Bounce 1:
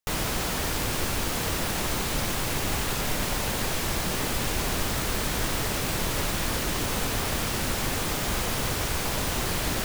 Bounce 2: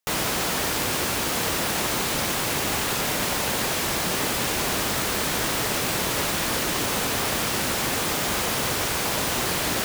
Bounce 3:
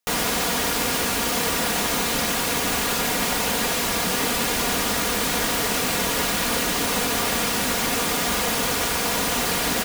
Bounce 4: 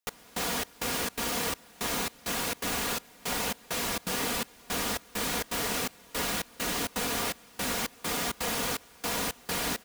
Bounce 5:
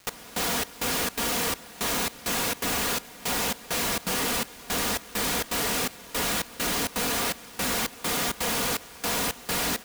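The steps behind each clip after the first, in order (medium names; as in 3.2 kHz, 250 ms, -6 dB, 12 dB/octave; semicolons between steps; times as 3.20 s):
high-pass 210 Hz 6 dB/octave; trim +4.5 dB
comb 4.2 ms, depth 52%; trim +1 dB
trance gate "x...xxx..xxx.xxx" 166 bpm -24 dB; trim -7.5 dB
overload inside the chain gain 34 dB; crackle 510 per s -48 dBFS; trim +9 dB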